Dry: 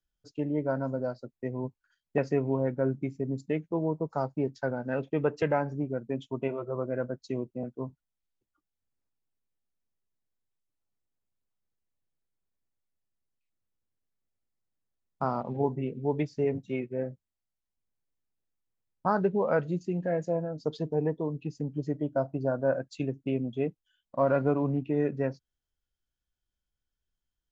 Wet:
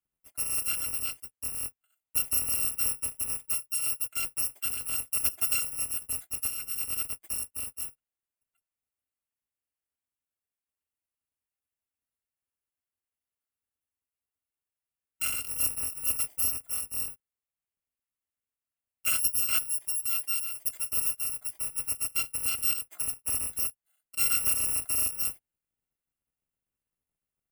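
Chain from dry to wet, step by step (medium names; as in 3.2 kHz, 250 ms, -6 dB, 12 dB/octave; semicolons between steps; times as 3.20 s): bit-reversed sample order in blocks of 256 samples; high-pass 99 Hz 6 dB/octave; high-order bell 4.8 kHz -9 dB 1.1 oct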